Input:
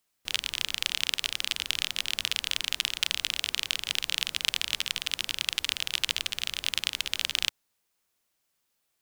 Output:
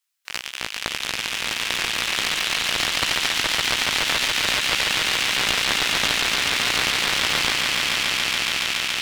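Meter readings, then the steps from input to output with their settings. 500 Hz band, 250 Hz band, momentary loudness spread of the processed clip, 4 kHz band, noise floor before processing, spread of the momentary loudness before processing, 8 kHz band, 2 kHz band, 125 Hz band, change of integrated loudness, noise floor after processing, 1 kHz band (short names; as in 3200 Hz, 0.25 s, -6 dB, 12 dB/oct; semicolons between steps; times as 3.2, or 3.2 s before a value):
+19.5 dB, +18.5 dB, 6 LU, +7.5 dB, -77 dBFS, 3 LU, +9.0 dB, +12.5 dB, +14.5 dB, +8.5 dB, -35 dBFS, +18.0 dB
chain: HPF 1400 Hz 12 dB/oct; chorus 1.9 Hz, delay 15 ms, depth 4.2 ms; on a send: swelling echo 0.141 s, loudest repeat 8, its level -3 dB; on the sum: Doppler distortion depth 0.67 ms; gain +3 dB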